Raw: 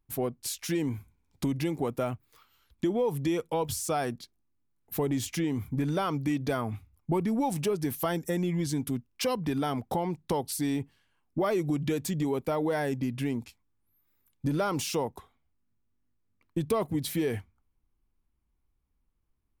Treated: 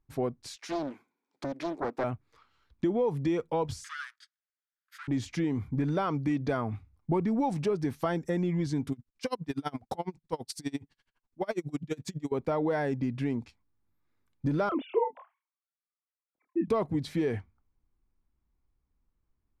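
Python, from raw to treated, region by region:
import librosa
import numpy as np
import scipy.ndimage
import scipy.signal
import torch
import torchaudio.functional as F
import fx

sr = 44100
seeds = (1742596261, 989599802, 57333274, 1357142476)

y = fx.chain(x, sr, fx.highpass(hz=280.0, slope=24),
    fx.doppler_dist(depth_ms=0.74), at=(0.56, 2.04))
y = fx.chain(y, sr, fx.lower_of_two(delay_ms=0.62),
    fx.steep_highpass(hz=1300.0, slope=48), at=(3.84, 5.08))
y = fx.chain(y, sr, fx.peak_eq(hz=16000.0, db=14.5, octaves=2.1),
    fx.tremolo_db(hz=12.0, depth_db=31), at=(8.92, 12.32))
y = fx.chain(y, sr, fx.sine_speech(),
    fx.doubler(ms=27.0, db=-4.5), at=(14.69, 16.68))
y = scipy.signal.sosfilt(scipy.signal.butter(2, 4200.0, 'lowpass', fs=sr, output='sos'), y)
y = fx.peak_eq(y, sr, hz=3000.0, db=-6.0, octaves=0.69)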